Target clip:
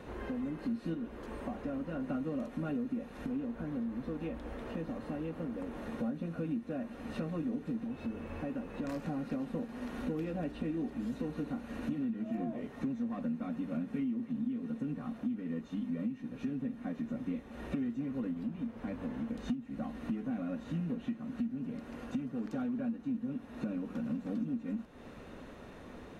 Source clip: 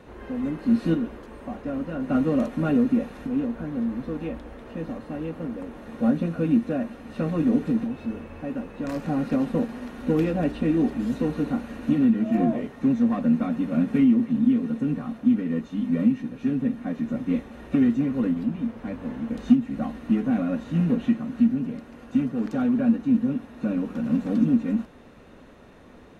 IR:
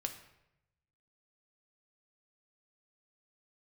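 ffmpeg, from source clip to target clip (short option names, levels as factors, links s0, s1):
-af "acompressor=threshold=0.0158:ratio=4"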